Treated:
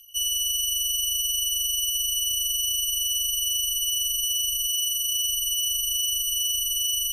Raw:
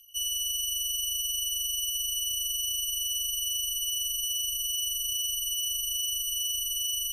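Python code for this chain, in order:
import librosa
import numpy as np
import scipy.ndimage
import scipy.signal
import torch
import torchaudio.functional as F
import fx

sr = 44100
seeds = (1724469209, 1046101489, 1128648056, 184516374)

y = fx.low_shelf(x, sr, hz=440.0, db=-8.5, at=(4.68, 5.14))
y = y * 10.0 ** (5.0 / 20.0)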